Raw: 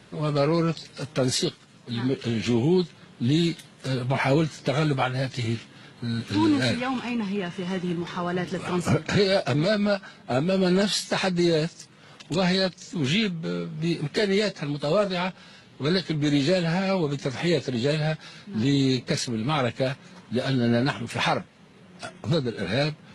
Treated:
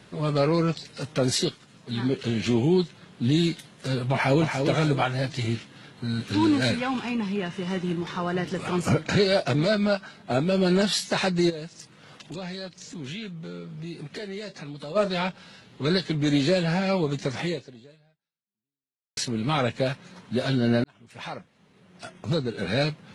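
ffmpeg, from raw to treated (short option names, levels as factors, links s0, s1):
-filter_complex "[0:a]asplit=2[s0][s1];[s1]afade=t=in:st=4.12:d=0.01,afade=t=out:st=4.62:d=0.01,aecho=0:1:290|580|870|1160:0.530884|0.18581|0.0650333|0.0227617[s2];[s0][s2]amix=inputs=2:normalize=0,asplit=3[s3][s4][s5];[s3]afade=t=out:st=11.49:d=0.02[s6];[s4]acompressor=threshold=0.0126:ratio=2.5:attack=3.2:release=140:knee=1:detection=peak,afade=t=in:st=11.49:d=0.02,afade=t=out:st=14.95:d=0.02[s7];[s5]afade=t=in:st=14.95:d=0.02[s8];[s6][s7][s8]amix=inputs=3:normalize=0,asplit=3[s9][s10][s11];[s9]atrim=end=19.17,asetpts=PTS-STARTPTS,afade=t=out:st=17.4:d=1.77:c=exp[s12];[s10]atrim=start=19.17:end=20.84,asetpts=PTS-STARTPTS,afade=t=in:d=0.004:c=hsin,afade=t=out:st=1.666:d=0.004:c=hsin[s13];[s11]atrim=start=20.84,asetpts=PTS-STARTPTS,afade=t=in:d=1.86[s14];[s12][s13][s14]concat=n=3:v=0:a=1"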